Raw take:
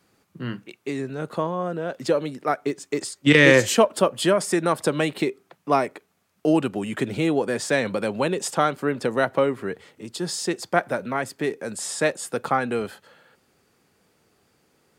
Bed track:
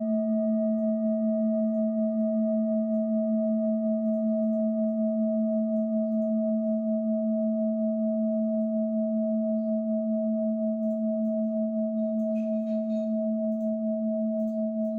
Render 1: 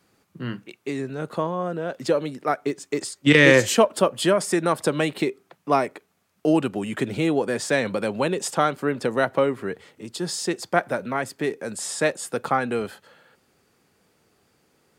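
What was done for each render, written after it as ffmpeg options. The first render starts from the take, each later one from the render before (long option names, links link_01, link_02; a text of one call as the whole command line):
ffmpeg -i in.wav -af anull out.wav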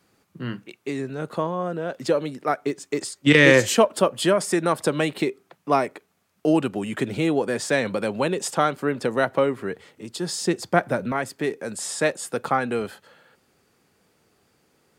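ffmpeg -i in.wav -filter_complex "[0:a]asettb=1/sr,asplit=3[link_01][link_02][link_03];[link_01]atrim=end=10.394[link_04];[link_02]atrim=start=10.39:end=11.12,asetpts=PTS-STARTPTS,afade=type=in:duration=0.004:curve=qsin,afade=type=out:start_time=0.726:duration=0.004:curve=qsin,lowshelf=frequency=240:gain=9[link_05];[link_03]atrim=start=11.116[link_06];[link_04][link_05]acrossfade=duration=0.004:curve1=hsin:curve2=qsin[link_07];[link_07][link_06]acrossfade=duration=0.004:curve1=qsin:curve2=hsin" out.wav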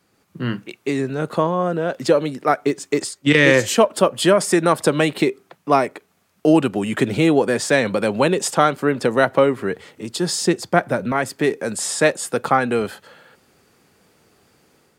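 ffmpeg -i in.wav -af "dynaudnorm=framelen=110:gausssize=5:maxgain=7dB" out.wav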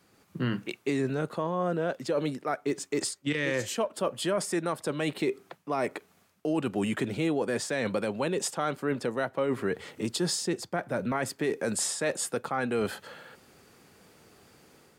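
ffmpeg -i in.wav -af "areverse,acompressor=threshold=-22dB:ratio=12,areverse,alimiter=limit=-19dB:level=0:latency=1:release=228" out.wav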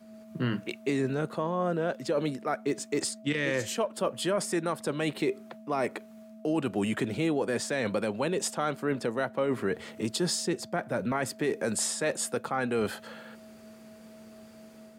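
ffmpeg -i in.wav -i bed.wav -filter_complex "[1:a]volume=-23dB[link_01];[0:a][link_01]amix=inputs=2:normalize=0" out.wav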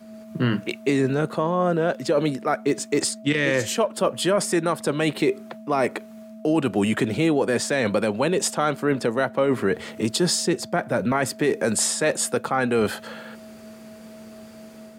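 ffmpeg -i in.wav -af "volume=7.5dB" out.wav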